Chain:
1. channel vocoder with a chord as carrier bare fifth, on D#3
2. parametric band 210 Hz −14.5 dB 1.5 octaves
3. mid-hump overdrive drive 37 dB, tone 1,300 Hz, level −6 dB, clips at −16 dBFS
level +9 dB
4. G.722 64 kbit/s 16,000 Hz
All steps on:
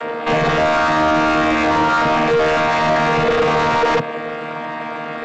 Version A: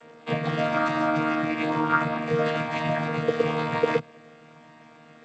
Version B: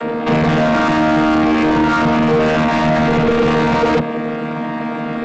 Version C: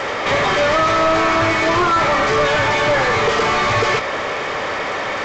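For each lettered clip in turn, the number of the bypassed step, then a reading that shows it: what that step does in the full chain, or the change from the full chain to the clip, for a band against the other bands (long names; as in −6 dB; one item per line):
3, change in crest factor +10.5 dB
2, 250 Hz band +9.0 dB
1, 4 kHz band +4.5 dB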